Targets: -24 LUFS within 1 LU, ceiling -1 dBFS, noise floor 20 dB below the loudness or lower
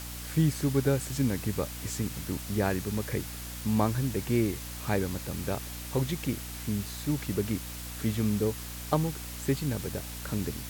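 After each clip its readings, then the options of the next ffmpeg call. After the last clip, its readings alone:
hum 60 Hz; harmonics up to 300 Hz; hum level -40 dBFS; noise floor -40 dBFS; noise floor target -51 dBFS; loudness -31.0 LUFS; peak -12.0 dBFS; loudness target -24.0 LUFS
-> -af "bandreject=f=60:t=h:w=6,bandreject=f=120:t=h:w=6,bandreject=f=180:t=h:w=6,bandreject=f=240:t=h:w=6,bandreject=f=300:t=h:w=6"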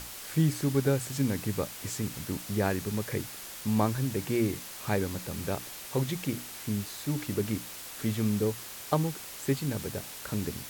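hum none; noise floor -43 dBFS; noise floor target -52 dBFS
-> -af "afftdn=nr=9:nf=-43"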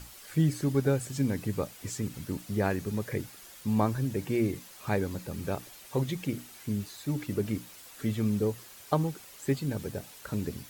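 noise floor -50 dBFS; noise floor target -52 dBFS
-> -af "afftdn=nr=6:nf=-50"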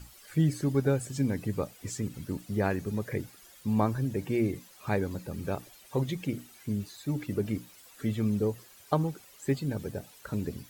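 noise floor -55 dBFS; loudness -32.0 LUFS; peak -11.5 dBFS; loudness target -24.0 LUFS
-> -af "volume=8dB"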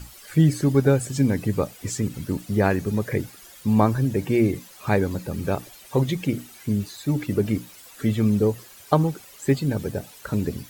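loudness -24.0 LUFS; peak -3.5 dBFS; noise floor -47 dBFS

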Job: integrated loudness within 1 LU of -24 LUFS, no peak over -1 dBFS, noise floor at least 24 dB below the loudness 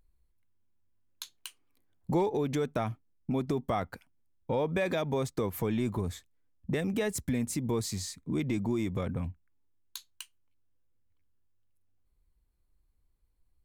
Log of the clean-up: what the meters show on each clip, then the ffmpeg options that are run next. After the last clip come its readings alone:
loudness -32.5 LUFS; peak -19.0 dBFS; loudness target -24.0 LUFS
-> -af "volume=8.5dB"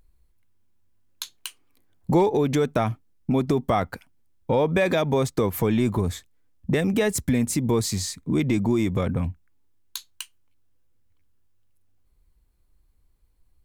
loudness -24.0 LUFS; peak -10.5 dBFS; noise floor -63 dBFS

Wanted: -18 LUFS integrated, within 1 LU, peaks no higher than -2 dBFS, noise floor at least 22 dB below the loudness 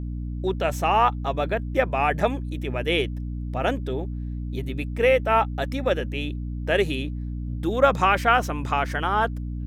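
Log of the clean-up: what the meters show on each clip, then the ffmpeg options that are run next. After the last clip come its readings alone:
hum 60 Hz; harmonics up to 300 Hz; hum level -28 dBFS; loudness -24.5 LUFS; peak -5.0 dBFS; loudness target -18.0 LUFS
-> -af "bandreject=f=60:t=h:w=6,bandreject=f=120:t=h:w=6,bandreject=f=180:t=h:w=6,bandreject=f=240:t=h:w=6,bandreject=f=300:t=h:w=6"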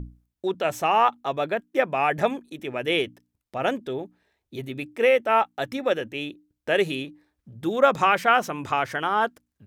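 hum none; loudness -24.5 LUFS; peak -5.5 dBFS; loudness target -18.0 LUFS
-> -af "volume=6.5dB,alimiter=limit=-2dB:level=0:latency=1"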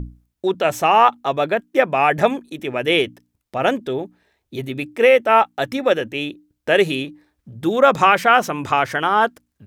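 loudness -18.0 LUFS; peak -2.0 dBFS; noise floor -75 dBFS

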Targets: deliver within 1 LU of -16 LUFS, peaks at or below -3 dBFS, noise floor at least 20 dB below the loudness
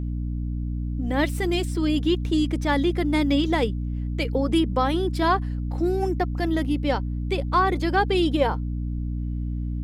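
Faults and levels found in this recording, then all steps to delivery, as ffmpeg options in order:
hum 60 Hz; harmonics up to 300 Hz; hum level -25 dBFS; loudness -24.5 LUFS; peak -8.5 dBFS; loudness target -16.0 LUFS
-> -af "bandreject=f=60:t=h:w=4,bandreject=f=120:t=h:w=4,bandreject=f=180:t=h:w=4,bandreject=f=240:t=h:w=4,bandreject=f=300:t=h:w=4"
-af "volume=8.5dB,alimiter=limit=-3dB:level=0:latency=1"

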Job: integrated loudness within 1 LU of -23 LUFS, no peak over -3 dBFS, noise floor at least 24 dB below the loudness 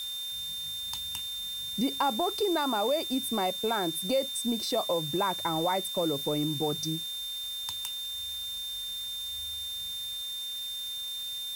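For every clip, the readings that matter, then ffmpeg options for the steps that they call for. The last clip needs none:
steady tone 3600 Hz; tone level -34 dBFS; noise floor -37 dBFS; noise floor target -55 dBFS; loudness -30.5 LUFS; peak -16.0 dBFS; loudness target -23.0 LUFS
-> -af "bandreject=f=3.6k:w=30"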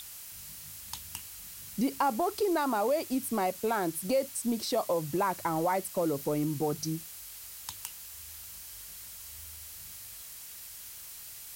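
steady tone none; noise floor -46 dBFS; noise floor target -57 dBFS
-> -af "afftdn=nr=11:nf=-46"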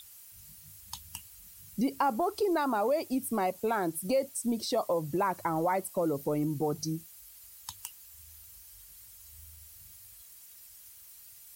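noise floor -53 dBFS; noise floor target -55 dBFS
-> -af "afftdn=nr=6:nf=-53"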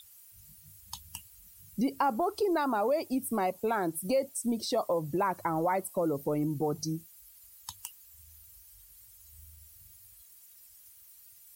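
noise floor -56 dBFS; loudness -31.0 LUFS; peak -17.0 dBFS; loudness target -23.0 LUFS
-> -af "volume=8dB"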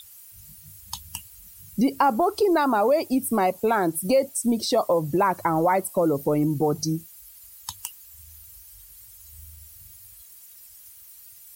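loudness -23.0 LUFS; peak -9.0 dBFS; noise floor -48 dBFS

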